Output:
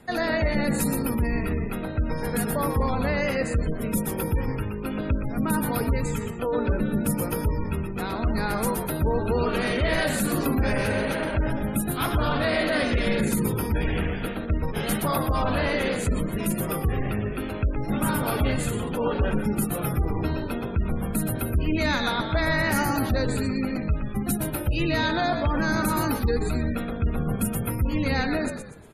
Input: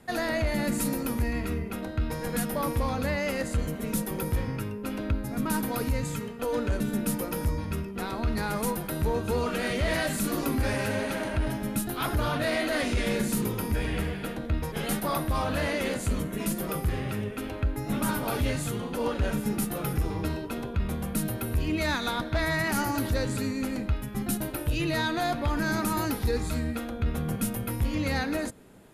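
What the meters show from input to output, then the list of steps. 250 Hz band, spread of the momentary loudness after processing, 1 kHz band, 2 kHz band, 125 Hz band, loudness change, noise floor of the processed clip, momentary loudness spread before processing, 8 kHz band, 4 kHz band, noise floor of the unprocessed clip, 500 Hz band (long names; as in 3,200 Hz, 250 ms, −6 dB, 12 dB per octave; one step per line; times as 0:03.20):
+3.5 dB, 5 LU, +3.5 dB, +3.5 dB, +4.0 dB, +3.5 dB, −32 dBFS, 5 LU, +2.0 dB, +2.5 dB, −37 dBFS, +4.0 dB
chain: echo with shifted repeats 120 ms, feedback 39%, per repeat −53 Hz, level −7 dB
gate on every frequency bin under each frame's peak −30 dB strong
level +3 dB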